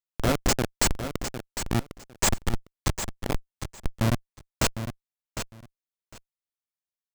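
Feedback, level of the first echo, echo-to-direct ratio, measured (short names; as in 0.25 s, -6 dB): 17%, -9.5 dB, -9.5 dB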